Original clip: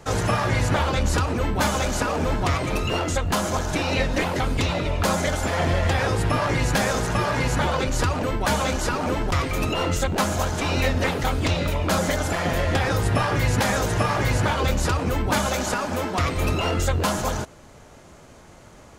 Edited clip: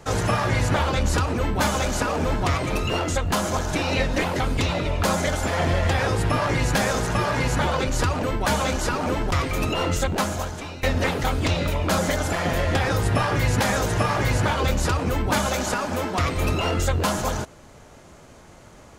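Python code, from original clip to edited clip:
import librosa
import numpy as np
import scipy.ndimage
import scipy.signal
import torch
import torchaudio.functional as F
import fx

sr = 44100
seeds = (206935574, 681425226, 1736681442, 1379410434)

y = fx.edit(x, sr, fx.fade_out_to(start_s=10.09, length_s=0.74, floor_db=-19.0), tone=tone)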